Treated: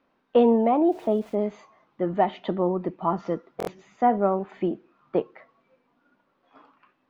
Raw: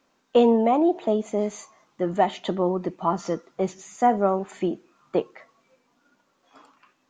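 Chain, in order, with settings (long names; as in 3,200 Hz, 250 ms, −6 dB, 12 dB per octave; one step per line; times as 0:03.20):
high-frequency loss of the air 310 metres
0:00.87–0:01.35: centre clipping without the shift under −48 dBFS
buffer that repeats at 0:03.58, samples 1,024, times 3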